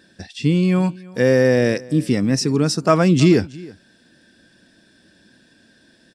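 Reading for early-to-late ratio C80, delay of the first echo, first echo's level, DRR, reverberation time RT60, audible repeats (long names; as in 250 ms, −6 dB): no reverb audible, 324 ms, −22.0 dB, no reverb audible, no reverb audible, 1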